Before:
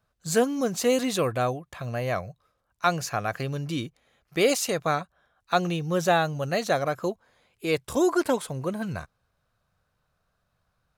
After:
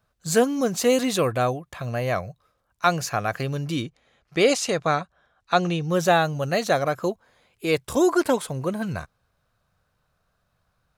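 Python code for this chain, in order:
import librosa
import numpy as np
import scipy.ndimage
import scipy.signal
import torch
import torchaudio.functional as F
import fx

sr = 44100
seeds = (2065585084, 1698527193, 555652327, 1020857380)

y = fx.lowpass(x, sr, hz=7600.0, slope=12, at=(3.82, 5.9))
y = y * librosa.db_to_amplitude(3.0)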